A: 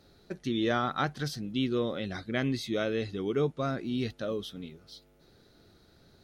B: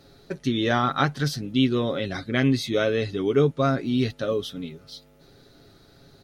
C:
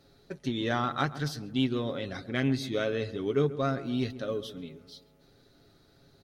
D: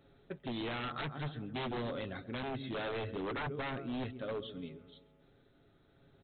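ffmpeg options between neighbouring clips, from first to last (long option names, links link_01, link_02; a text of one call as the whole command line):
ffmpeg -i in.wav -af "aecho=1:1:7.3:0.44,volume=6.5dB" out.wav
ffmpeg -i in.wav -filter_complex "[0:a]aeval=exprs='0.422*(cos(1*acos(clip(val(0)/0.422,-1,1)))-cos(1*PI/2))+0.00944*(cos(7*acos(clip(val(0)/0.422,-1,1)))-cos(7*PI/2))':channel_layout=same,asplit=2[link_01][link_02];[link_02]adelay=135,lowpass=frequency=1300:poles=1,volume=-14dB,asplit=2[link_03][link_04];[link_04]adelay=135,lowpass=frequency=1300:poles=1,volume=0.54,asplit=2[link_05][link_06];[link_06]adelay=135,lowpass=frequency=1300:poles=1,volume=0.54,asplit=2[link_07][link_08];[link_08]adelay=135,lowpass=frequency=1300:poles=1,volume=0.54,asplit=2[link_09][link_10];[link_10]adelay=135,lowpass=frequency=1300:poles=1,volume=0.54[link_11];[link_01][link_03][link_05][link_07][link_09][link_11]amix=inputs=6:normalize=0,volume=-6.5dB" out.wav
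ffmpeg -i in.wav -af "tremolo=f=0.62:d=0.29,aresample=8000,aeval=exprs='0.0316*(abs(mod(val(0)/0.0316+3,4)-2)-1)':channel_layout=same,aresample=44100,volume=-2.5dB" out.wav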